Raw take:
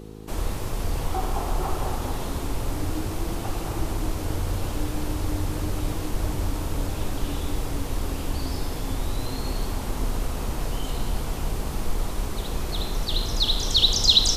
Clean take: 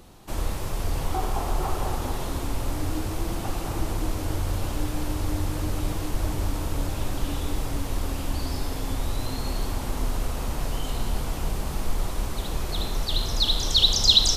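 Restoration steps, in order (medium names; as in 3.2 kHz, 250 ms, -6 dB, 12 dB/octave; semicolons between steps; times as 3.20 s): de-hum 53.2 Hz, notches 9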